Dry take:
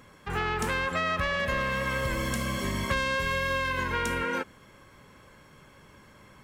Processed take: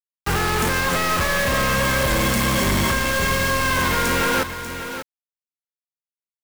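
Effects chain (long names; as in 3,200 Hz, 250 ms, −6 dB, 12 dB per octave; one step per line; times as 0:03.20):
brickwall limiter −20.5 dBFS, peak gain reduction 7.5 dB
log-companded quantiser 2 bits
on a send: single-tap delay 591 ms −10 dB
on the sum: level +6.5 dB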